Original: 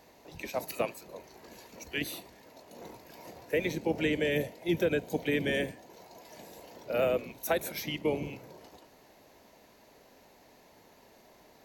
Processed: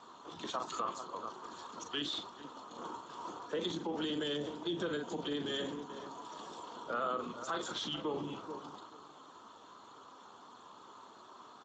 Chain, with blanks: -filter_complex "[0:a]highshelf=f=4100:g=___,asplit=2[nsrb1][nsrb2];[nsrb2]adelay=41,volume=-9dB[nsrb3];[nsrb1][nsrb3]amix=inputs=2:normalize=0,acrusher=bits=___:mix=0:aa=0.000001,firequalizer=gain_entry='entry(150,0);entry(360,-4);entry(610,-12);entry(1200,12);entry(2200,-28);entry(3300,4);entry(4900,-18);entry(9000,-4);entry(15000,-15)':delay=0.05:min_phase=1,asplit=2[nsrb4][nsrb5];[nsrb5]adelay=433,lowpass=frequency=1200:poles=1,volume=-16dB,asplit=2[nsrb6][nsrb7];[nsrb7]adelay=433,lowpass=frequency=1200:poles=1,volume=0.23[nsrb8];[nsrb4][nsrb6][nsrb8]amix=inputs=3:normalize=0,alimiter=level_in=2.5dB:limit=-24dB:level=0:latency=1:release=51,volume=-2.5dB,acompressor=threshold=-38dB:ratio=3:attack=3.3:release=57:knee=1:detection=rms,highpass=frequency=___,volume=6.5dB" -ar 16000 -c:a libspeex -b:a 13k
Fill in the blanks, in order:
9, 10, 280